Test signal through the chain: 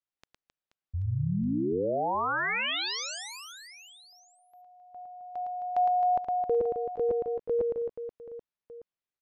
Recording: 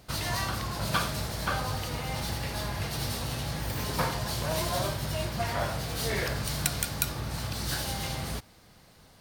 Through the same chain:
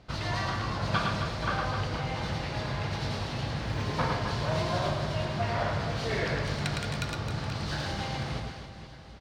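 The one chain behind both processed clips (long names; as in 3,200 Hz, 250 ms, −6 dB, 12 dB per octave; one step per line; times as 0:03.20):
high-frequency loss of the air 150 metres
on a send: reverse bouncing-ball delay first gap 110 ms, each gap 1.4×, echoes 5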